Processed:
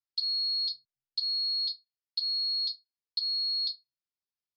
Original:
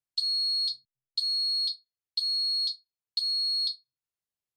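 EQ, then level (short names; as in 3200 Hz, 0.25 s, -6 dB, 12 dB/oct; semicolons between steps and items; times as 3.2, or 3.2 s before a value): ladder low-pass 5500 Hz, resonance 65%; air absorption 92 m; +3.5 dB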